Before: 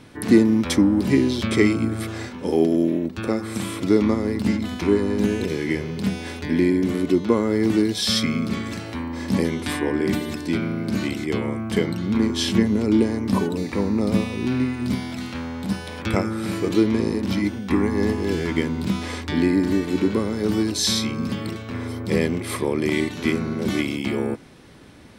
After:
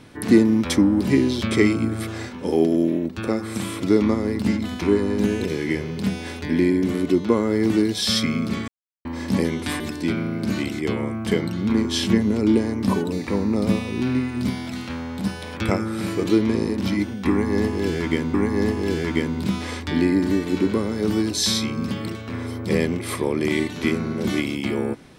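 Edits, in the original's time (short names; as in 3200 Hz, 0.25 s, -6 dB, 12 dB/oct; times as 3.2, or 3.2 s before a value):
8.68–9.05 mute
9.8–10.25 cut
17.75–18.79 loop, 2 plays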